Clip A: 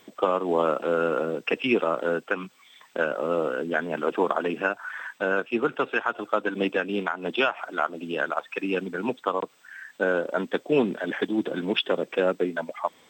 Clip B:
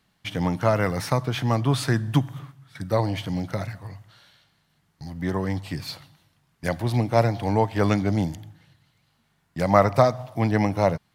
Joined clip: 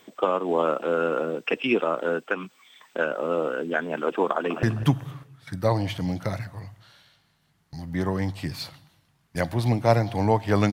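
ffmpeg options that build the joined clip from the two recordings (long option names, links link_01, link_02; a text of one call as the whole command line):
ffmpeg -i cue0.wav -i cue1.wav -filter_complex "[0:a]apad=whole_dur=10.72,atrim=end=10.72,atrim=end=4.632[link_01];[1:a]atrim=start=1.908:end=8[link_02];[link_01][link_02]acrossfade=duration=0.004:curve1=hsin:curve2=hsin,asplit=2[link_03][link_04];[link_04]afade=type=in:start_time=4.26:duration=0.01,afade=type=out:start_time=4.63:duration=0.01,aecho=0:1:200|400|600|800:0.281838|0.0986434|0.0345252|0.0120838[link_05];[link_03][link_05]amix=inputs=2:normalize=0" out.wav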